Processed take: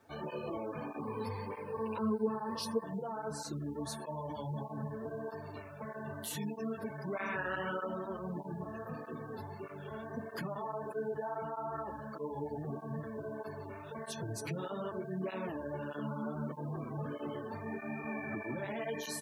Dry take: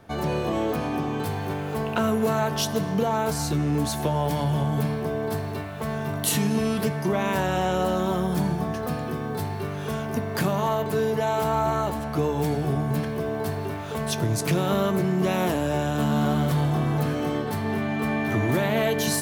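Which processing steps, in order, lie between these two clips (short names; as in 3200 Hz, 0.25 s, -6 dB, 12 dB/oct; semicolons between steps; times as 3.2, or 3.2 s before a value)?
low shelf 150 Hz -10 dB; notch 730 Hz, Q 12; resonator 850 Hz, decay 0.37 s, mix 70%; feedback echo 0.145 s, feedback 41%, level -15 dB; spectral gate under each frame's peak -20 dB strong; HPF 40 Hz 6 dB/oct; bit-crush 12-bit; limiter -29 dBFS, peak gain reduction 6.5 dB; 1.02–2.84 ripple EQ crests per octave 0.92, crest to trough 15 dB; 7.16–7.86 spectral gain 1100–2400 Hz +8 dB; tape flanging out of phase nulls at 1.6 Hz, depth 6.7 ms; gain +1.5 dB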